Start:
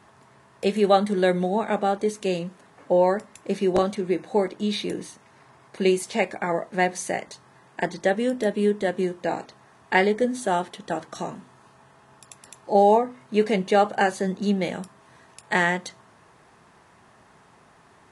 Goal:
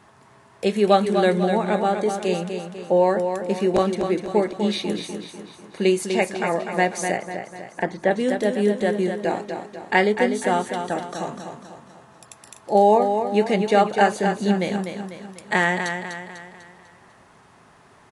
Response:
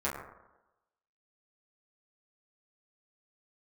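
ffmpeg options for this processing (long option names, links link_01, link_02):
-filter_complex "[0:a]aecho=1:1:248|496|744|992|1240|1488:0.447|0.21|0.0987|0.0464|0.0218|0.0102,asettb=1/sr,asplit=3[link_01][link_02][link_03];[link_01]atrim=end=7.174[link_04];[link_02]atrim=start=7.17:end=8.11,asetpts=PTS-STARTPTS,afade=type=in:duration=0.004:curve=qsin,afade=type=out:start_time=0.936:duration=0.004:curve=qsin,acrossover=split=2700[link_05][link_06];[link_06]acompressor=threshold=-51dB:ratio=4:attack=1:release=60[link_07];[link_05][link_07]amix=inputs=2:normalize=0[link_08];[link_03]atrim=start=8.106[link_09];[link_04][link_08]acrossfade=duration=0.004:curve1=hsin:curve2=qsin[link_10];[link_10][link_09]acrossfade=duration=0.004:curve1=qsin:curve2=hsin,volume=1.5dB"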